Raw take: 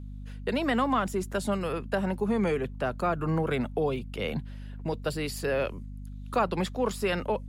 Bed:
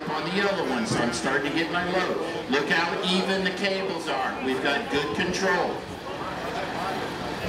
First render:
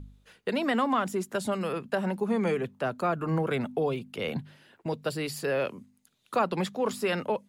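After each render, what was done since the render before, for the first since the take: de-hum 50 Hz, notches 5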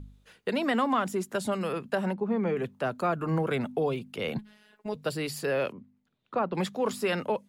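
2.13–2.57 tape spacing loss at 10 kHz 27 dB; 4.38–4.95 robotiser 211 Hz; 5.72–6.55 tape spacing loss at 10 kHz 33 dB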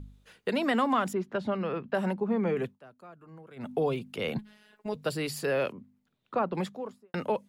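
1.13–1.95 air absorption 270 m; 2.63–3.72 dip -22 dB, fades 0.16 s; 6.38–7.14 studio fade out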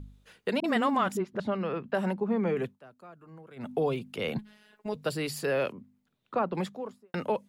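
0.6–1.4 dispersion highs, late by 41 ms, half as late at 310 Hz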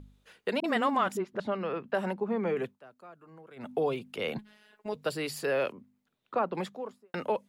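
tone controls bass -7 dB, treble -2 dB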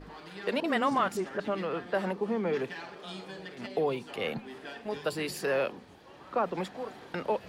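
add bed -19 dB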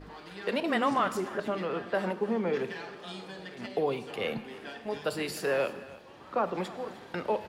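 echo 0.309 s -19 dB; plate-style reverb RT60 1 s, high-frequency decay 1×, DRR 11.5 dB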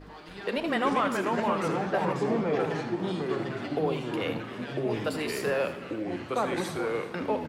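echoes that change speed 0.288 s, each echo -3 st, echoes 3; echo 79 ms -12.5 dB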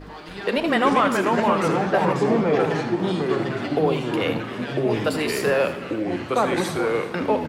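gain +7.5 dB

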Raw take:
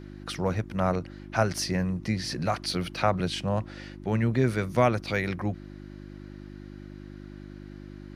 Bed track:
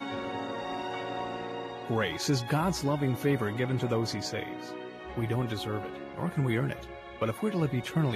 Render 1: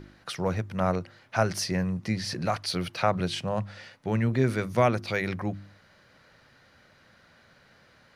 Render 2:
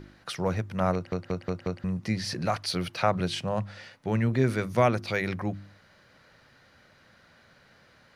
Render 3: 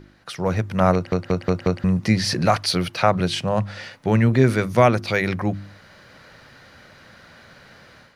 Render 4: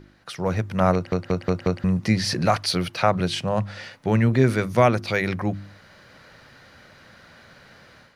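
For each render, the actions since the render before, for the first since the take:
de-hum 50 Hz, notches 7
0.94 stutter in place 0.18 s, 5 plays
AGC gain up to 11 dB
gain -2 dB

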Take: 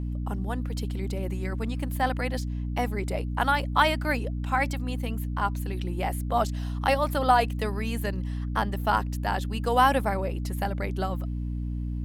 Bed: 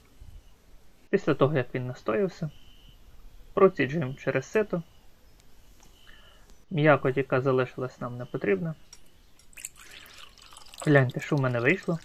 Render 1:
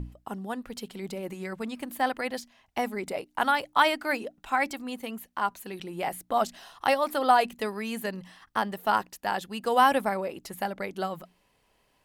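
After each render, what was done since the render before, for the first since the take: notches 60/120/180/240/300 Hz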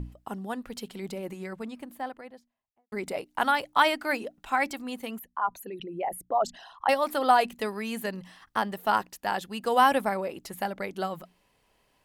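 0.97–2.92 studio fade out; 5.19–6.89 formant sharpening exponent 2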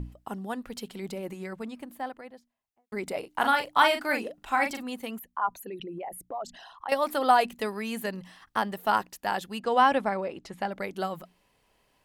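3.19–4.83 doubler 40 ms -6 dB; 5.98–6.92 compressor 2:1, threshold -39 dBFS; 9.6–10.72 air absorption 88 m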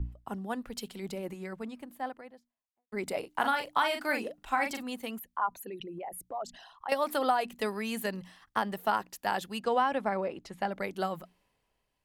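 compressor 6:1, threshold -25 dBFS, peak gain reduction 10 dB; three-band expander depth 40%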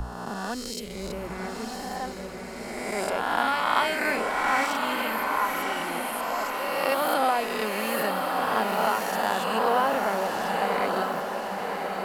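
spectral swells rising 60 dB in 1.76 s; on a send: diffused feedback echo 1.098 s, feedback 56%, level -4 dB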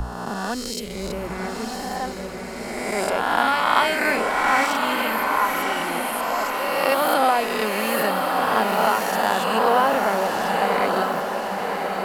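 gain +5 dB

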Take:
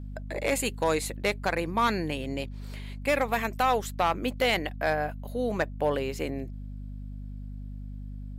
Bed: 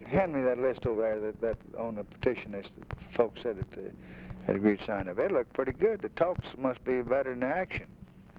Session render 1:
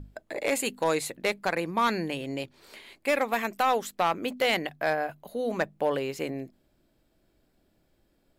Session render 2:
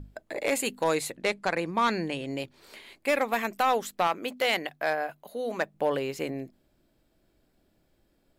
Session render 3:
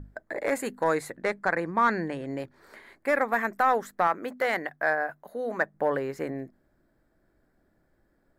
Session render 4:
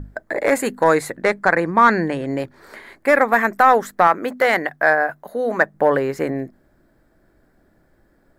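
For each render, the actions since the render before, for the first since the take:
notches 50/100/150/200/250 Hz
1.12–2.28 LPF 10000 Hz 24 dB/oct; 4.07–5.74 low shelf 210 Hz -11.5 dB
resonant high shelf 2200 Hz -7.5 dB, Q 3
gain +10 dB

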